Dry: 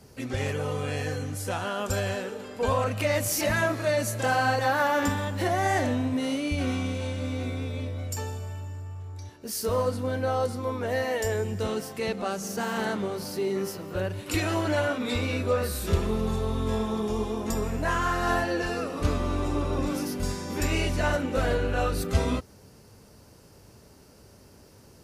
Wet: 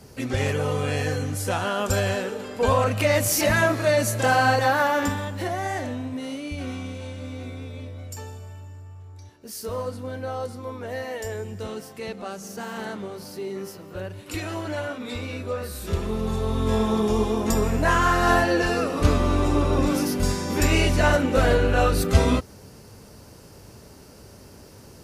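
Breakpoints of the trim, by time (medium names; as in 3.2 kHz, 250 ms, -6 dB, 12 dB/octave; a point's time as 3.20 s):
4.55 s +5 dB
5.77 s -4 dB
15.66 s -4 dB
16.88 s +6.5 dB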